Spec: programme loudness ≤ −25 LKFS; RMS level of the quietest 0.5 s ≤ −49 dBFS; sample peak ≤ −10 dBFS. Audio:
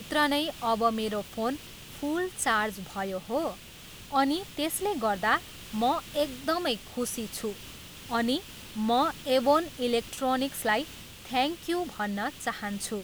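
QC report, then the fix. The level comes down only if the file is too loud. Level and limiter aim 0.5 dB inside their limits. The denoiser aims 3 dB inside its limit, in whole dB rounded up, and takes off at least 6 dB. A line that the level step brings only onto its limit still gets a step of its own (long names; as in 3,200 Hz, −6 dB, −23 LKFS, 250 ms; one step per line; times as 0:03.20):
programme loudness −29.5 LKFS: in spec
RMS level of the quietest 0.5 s −47 dBFS: out of spec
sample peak −12.5 dBFS: in spec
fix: broadband denoise 6 dB, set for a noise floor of −47 dBFS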